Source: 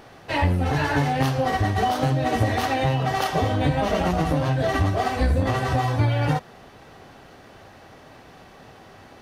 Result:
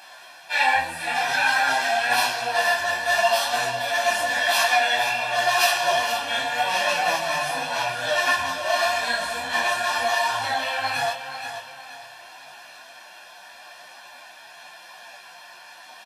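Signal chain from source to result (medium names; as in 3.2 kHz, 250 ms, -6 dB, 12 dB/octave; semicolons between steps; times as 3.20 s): time stretch by phase-locked vocoder 1.6×; high-pass 880 Hz 12 dB/octave; treble shelf 2.1 kHz +8.5 dB; comb 1.1 ms, depth 81%; feedback delay 436 ms, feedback 36%, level -9.5 dB; on a send at -9.5 dB: reverberation RT60 0.60 s, pre-delay 3 ms; on the sum: speed mistake 48 kHz file played as 44.1 kHz; detune thickener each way 30 cents; trim +4.5 dB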